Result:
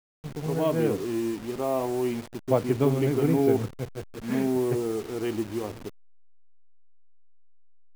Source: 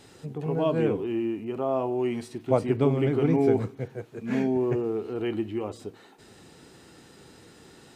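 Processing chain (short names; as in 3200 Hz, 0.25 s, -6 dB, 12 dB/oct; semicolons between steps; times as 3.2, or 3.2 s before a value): level-crossing sampler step -36 dBFS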